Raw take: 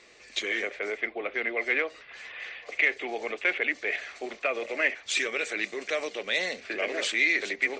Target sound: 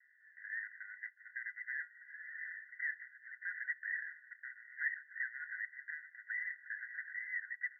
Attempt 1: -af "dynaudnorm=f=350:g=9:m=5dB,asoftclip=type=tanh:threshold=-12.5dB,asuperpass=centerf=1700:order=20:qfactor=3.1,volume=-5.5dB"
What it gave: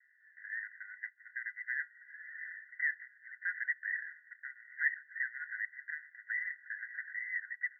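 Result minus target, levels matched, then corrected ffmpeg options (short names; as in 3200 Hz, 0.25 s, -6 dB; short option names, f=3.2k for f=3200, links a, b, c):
soft clip: distortion -10 dB
-af "dynaudnorm=f=350:g=9:m=5dB,asoftclip=type=tanh:threshold=-22.5dB,asuperpass=centerf=1700:order=20:qfactor=3.1,volume=-5.5dB"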